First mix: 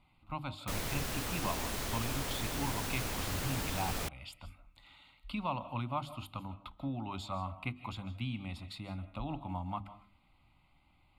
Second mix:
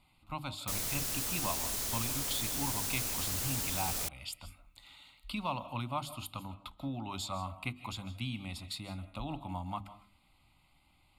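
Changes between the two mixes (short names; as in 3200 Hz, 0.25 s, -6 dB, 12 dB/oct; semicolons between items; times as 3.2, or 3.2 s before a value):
background -5.0 dB; master: add tone controls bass -1 dB, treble +13 dB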